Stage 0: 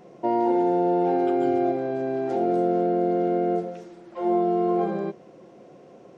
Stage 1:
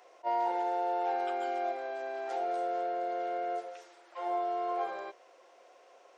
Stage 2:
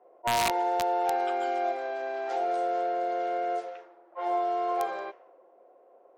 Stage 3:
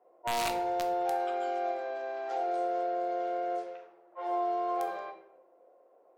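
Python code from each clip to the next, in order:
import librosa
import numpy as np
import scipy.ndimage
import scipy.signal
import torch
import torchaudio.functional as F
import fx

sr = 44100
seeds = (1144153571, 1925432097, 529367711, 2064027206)

y1 = scipy.signal.sosfilt(scipy.signal.bessel(4, 910.0, 'highpass', norm='mag', fs=sr, output='sos'), x)
y1 = fx.attack_slew(y1, sr, db_per_s=520.0)
y2 = (np.mod(10.0 ** (23.0 / 20.0) * y1 + 1.0, 2.0) - 1.0) / 10.0 ** (23.0 / 20.0)
y2 = fx.env_lowpass(y2, sr, base_hz=510.0, full_db=-31.0)
y2 = y2 * librosa.db_to_amplitude(4.5)
y3 = fx.room_shoebox(y2, sr, seeds[0], volume_m3=130.0, walls='mixed', distance_m=0.53)
y3 = y3 * librosa.db_to_amplitude(-6.0)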